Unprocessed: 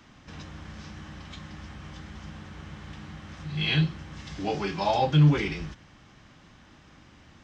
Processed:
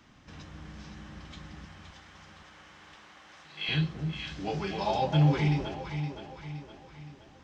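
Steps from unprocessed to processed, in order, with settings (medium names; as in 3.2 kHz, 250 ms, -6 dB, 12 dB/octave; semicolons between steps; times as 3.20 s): 1.65–3.69 s: high-pass 570 Hz 12 dB/octave; echo whose repeats swap between lows and highs 259 ms, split 840 Hz, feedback 68%, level -4.5 dB; trim -4.5 dB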